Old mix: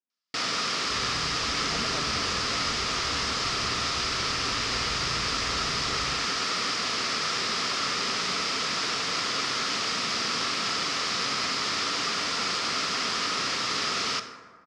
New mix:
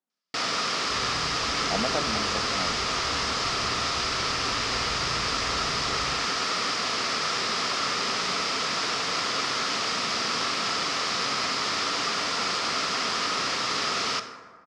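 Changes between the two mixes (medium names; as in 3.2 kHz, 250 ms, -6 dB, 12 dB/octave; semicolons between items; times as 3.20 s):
speech +7.5 dB; master: add peaking EQ 740 Hz +4.5 dB 1.4 oct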